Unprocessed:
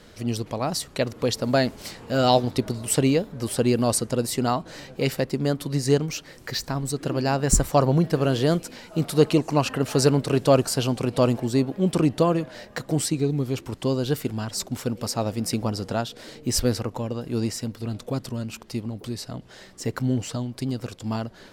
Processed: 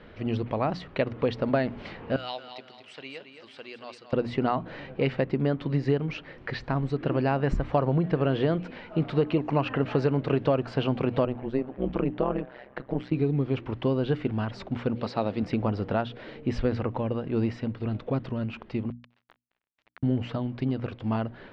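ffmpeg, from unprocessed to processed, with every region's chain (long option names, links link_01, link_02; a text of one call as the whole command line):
ffmpeg -i in.wav -filter_complex "[0:a]asettb=1/sr,asplit=3[link_01][link_02][link_03];[link_01]atrim=end=2.164[link_04];[link_02]atrim=start=2.16:end=4.13,asetpts=PTS-STARTPTS,afade=type=in:duration=0.004:curve=qsin,afade=type=out:start_time=1.966:duration=0.004:curve=qsin,bandpass=frequency=7700:width_type=q:width=0.7,aecho=1:1:221|442|663|884:0.355|0.131|0.0486|0.018,atrim=end_sample=86877[link_05];[link_03]atrim=start=4.126[link_06];[link_04][link_05]acrossfade=duration=0.004:curve1=hsin:curve2=qsin[link_07];[link_07][link_06]acrossfade=duration=0.004:curve1=qsin:curve2=hsin,asettb=1/sr,asplit=3[link_08][link_09][link_10];[link_08]atrim=end=11.254[link_11];[link_09]atrim=start=11.25:end=13.12,asetpts=PTS-STARTPTS,afade=type=in:duration=0.004:curve=qsin,afade=type=out:start_time=1.866:duration=0.004:curve=qsin,lowpass=frequency=2500:poles=1,lowshelf=frequency=130:gain=-9.5,tremolo=f=130:d=1[link_12];[link_10]atrim=start=13.116[link_13];[link_11][link_12]acrossfade=duration=0.004:curve1=hsin:curve2=qsin[link_14];[link_14][link_13]acrossfade=duration=0.004:curve1=qsin:curve2=hsin,asettb=1/sr,asplit=3[link_15][link_16][link_17];[link_15]atrim=end=14.954[link_18];[link_16]atrim=start=14.95:end=15.43,asetpts=PTS-STARTPTS,afade=type=in:duration=0.004:curve=qsin,afade=type=out:start_time=0.476:duration=0.004:curve=qsin,highpass=140,equalizer=frequency=4100:width_type=o:width=0.38:gain=10.5[link_19];[link_17]atrim=start=15.426[link_20];[link_18][link_19]acrossfade=duration=0.004:curve1=hsin:curve2=qsin[link_21];[link_21][link_20]acrossfade=duration=0.004:curve1=qsin:curve2=hsin,asettb=1/sr,asplit=3[link_22][link_23][link_24];[link_22]atrim=end=18.904[link_25];[link_23]atrim=start=18.9:end=20.03,asetpts=PTS-STARTPTS,afade=type=in:duration=0.004:curve=qsin,afade=type=out:start_time=1.126:duration=0.004:curve=qsin,highpass=930,acompressor=threshold=-44dB:ratio=16:attack=3.2:release=140:knee=1:detection=peak,acrusher=bits=5:mix=0:aa=0.5[link_26];[link_24]atrim=start=20.026[link_27];[link_25][link_26]acrossfade=duration=0.004:curve1=hsin:curve2=qsin[link_28];[link_28][link_27]acrossfade=duration=0.004:curve1=qsin:curve2=hsin,bandreject=frequency=60:width_type=h:width=6,bandreject=frequency=120:width_type=h:width=6,bandreject=frequency=180:width_type=h:width=6,bandreject=frequency=240:width_type=h:width=6,bandreject=frequency=300:width_type=h:width=6,acompressor=threshold=-21dB:ratio=6,lowpass=frequency=2900:width=0.5412,lowpass=frequency=2900:width=1.3066,volume=1dB" out.wav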